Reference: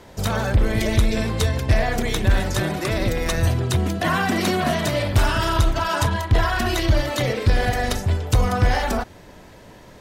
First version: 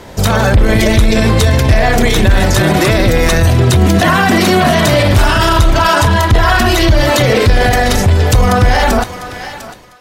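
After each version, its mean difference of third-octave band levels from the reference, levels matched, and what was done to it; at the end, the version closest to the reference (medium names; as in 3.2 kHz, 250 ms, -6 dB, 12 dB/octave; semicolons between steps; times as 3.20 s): 2.5 dB: fade out at the end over 2.50 s; level rider gain up to 15.5 dB; on a send: thinning echo 700 ms, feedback 20%, high-pass 930 Hz, level -16 dB; on the sum: loudness maximiser +12.5 dB; trim -1 dB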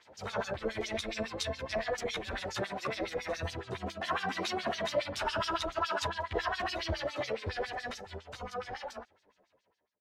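8.0 dB: fade out at the end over 2.99 s; LFO band-pass sine 7.2 Hz 480–5600 Hz; bass shelf 130 Hz +11 dB; three-phase chorus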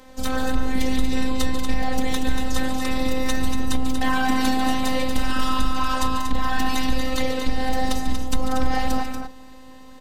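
5.5 dB: octave divider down 2 oct, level +2 dB; compression, threshold -13 dBFS, peak gain reduction 6.5 dB; robot voice 259 Hz; on a send: loudspeakers at several distances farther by 49 m -11 dB, 81 m -7 dB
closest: first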